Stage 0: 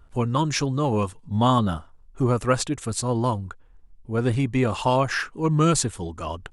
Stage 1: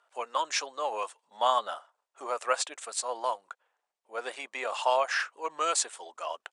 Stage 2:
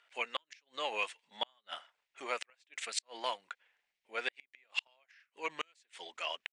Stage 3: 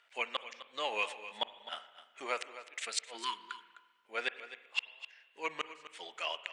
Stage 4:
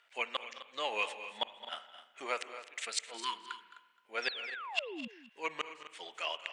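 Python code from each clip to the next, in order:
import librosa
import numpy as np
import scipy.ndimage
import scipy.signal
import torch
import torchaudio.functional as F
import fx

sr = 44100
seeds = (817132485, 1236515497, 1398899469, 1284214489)

y1 = scipy.signal.sosfilt(scipy.signal.ellip(3, 1.0, 60, [600.0, 8900.0], 'bandpass', fs=sr, output='sos'), x)
y1 = y1 * librosa.db_to_amplitude(-2.5)
y2 = fx.curve_eq(y1, sr, hz=(170.0, 600.0, 1200.0, 2100.0, 5300.0, 9000.0), db=(0, -11, -11, 8, -2, -10))
y2 = fx.gate_flip(y2, sr, shuts_db=-24.0, range_db=-40)
y2 = y2 * librosa.db_to_amplitude(4.0)
y3 = y2 + 10.0 ** (-14.0 / 20.0) * np.pad(y2, (int(257 * sr / 1000.0), 0))[:len(y2)]
y3 = fx.spec_erase(y3, sr, start_s=3.18, length_s=0.53, low_hz=450.0, high_hz=920.0)
y3 = fx.rev_spring(y3, sr, rt60_s=1.5, pass_ms=(38, 47), chirp_ms=70, drr_db=14.0)
y3 = y3 * librosa.db_to_amplitude(1.0)
y4 = fx.spec_paint(y3, sr, seeds[0], shape='fall', start_s=4.22, length_s=0.86, low_hz=210.0, high_hz=5800.0, level_db=-43.0)
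y4 = y4 + 10.0 ** (-15.0 / 20.0) * np.pad(y4, (int(215 * sr / 1000.0), 0))[:len(y4)]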